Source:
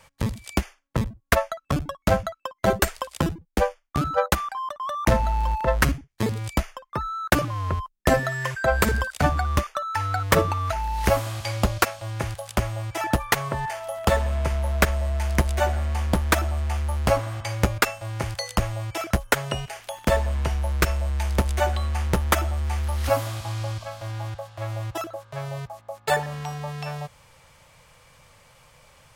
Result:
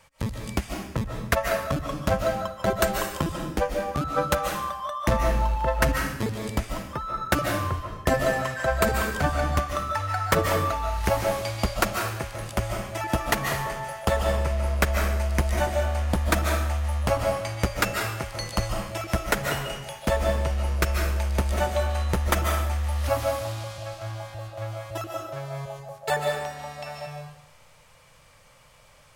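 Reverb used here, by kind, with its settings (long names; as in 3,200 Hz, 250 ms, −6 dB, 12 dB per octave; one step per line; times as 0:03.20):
comb and all-pass reverb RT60 0.77 s, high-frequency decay 1×, pre-delay 105 ms, DRR 1.5 dB
level −3.5 dB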